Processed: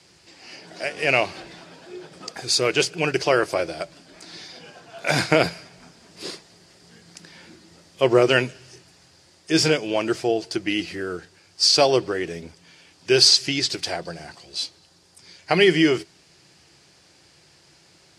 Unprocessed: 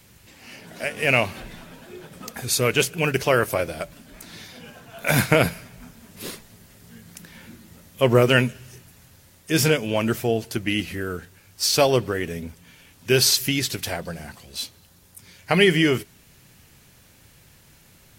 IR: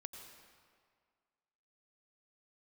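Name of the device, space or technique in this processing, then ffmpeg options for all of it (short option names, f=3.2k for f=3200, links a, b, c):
car door speaker: -filter_complex "[0:a]asettb=1/sr,asplit=3[a][b][c];[a]atrim=end=13.284[d];[b]atrim=start=13.28:end=13.7,asetpts=PTS-STARTPTS,afade=t=in:d=0.004:c=qsin,afade=t=out:st=0.416:d=0.004:c=qsin,lowpass=9.3k[e];[c]atrim=start=13.696[f];[d][e]acrossfade=d=0.004:c1=hsin:c2=qsin[g];[g][f]acrossfade=d=0.004:c1=qsin:c2=hsin,highpass=110,equalizer=f=110:t=q:w=4:g=-9,equalizer=f=230:t=q:w=4:g=-10,equalizer=f=340:t=q:w=4:g=7,equalizer=f=730:t=q:w=4:g=4,equalizer=f=4.8k:t=q:w=4:g=10,lowpass=f=8.6k:w=0.5412,lowpass=f=8.6k:w=1.3066,volume=-1dB"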